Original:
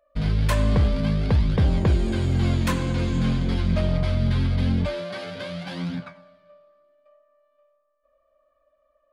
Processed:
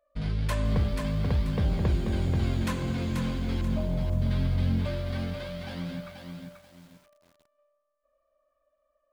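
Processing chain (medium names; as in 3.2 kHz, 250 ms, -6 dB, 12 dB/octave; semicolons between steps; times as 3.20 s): 3.61–4.22 s: steep low-pass 1.1 kHz 72 dB/octave; bit-crushed delay 485 ms, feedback 35%, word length 8-bit, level -5 dB; trim -7 dB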